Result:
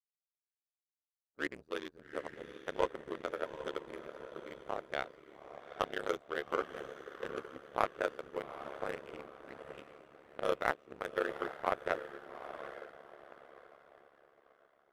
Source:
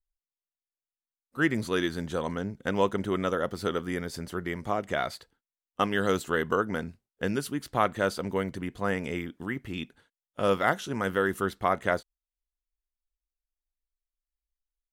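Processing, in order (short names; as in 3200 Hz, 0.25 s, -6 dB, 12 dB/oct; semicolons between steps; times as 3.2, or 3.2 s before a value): Wiener smoothing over 41 samples; resonant low shelf 310 Hz -10 dB, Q 1.5; on a send: diffused feedback echo 0.814 s, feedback 49%, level -6 dB; on the sum: ring modulator 35 Hz; power-law curve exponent 1.4; gain -2 dB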